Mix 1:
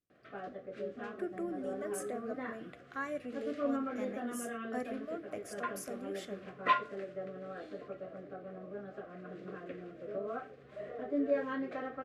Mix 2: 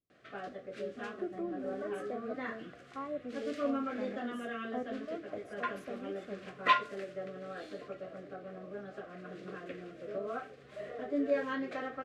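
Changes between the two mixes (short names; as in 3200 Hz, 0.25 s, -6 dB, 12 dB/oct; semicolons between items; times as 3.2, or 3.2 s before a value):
speech: add polynomial smoothing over 65 samples; master: add high shelf 2500 Hz +11 dB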